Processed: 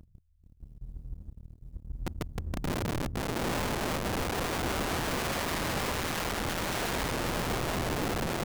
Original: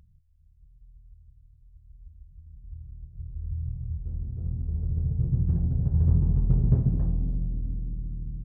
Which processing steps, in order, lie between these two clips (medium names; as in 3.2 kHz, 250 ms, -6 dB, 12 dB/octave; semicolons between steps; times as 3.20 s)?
in parallel at -3 dB: compressor with a negative ratio -28 dBFS, ratio -1; on the sum: waveshaping leveller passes 3; integer overflow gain 22 dB; trim -4.5 dB